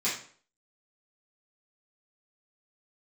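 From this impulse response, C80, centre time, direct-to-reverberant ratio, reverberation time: 10.5 dB, 35 ms, -10.0 dB, 0.50 s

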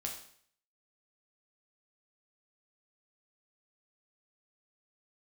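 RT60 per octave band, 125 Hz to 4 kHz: 0.60, 0.55, 0.60, 0.60, 0.60, 0.60 s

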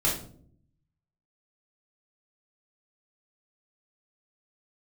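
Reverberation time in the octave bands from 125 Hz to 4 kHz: 1.1, 0.95, 0.70, 0.45, 0.35, 0.35 s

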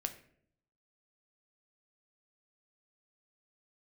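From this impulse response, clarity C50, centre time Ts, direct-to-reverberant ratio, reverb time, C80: 12.5 dB, 9 ms, 6.5 dB, 0.65 s, 15.5 dB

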